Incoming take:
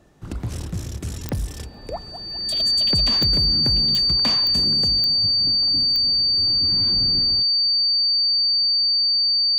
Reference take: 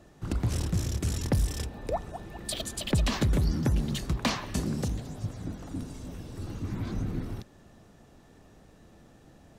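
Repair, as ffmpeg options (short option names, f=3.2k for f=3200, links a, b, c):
-af "adeclick=t=4,bandreject=f=4.6k:w=30"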